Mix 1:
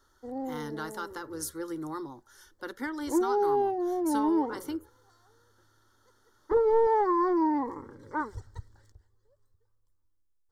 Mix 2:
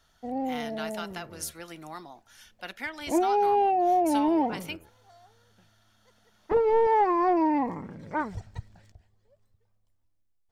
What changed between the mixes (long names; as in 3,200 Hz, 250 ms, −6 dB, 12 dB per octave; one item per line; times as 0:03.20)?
speech: add high-pass filter 1,200 Hz 6 dB per octave
master: remove phaser with its sweep stopped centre 680 Hz, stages 6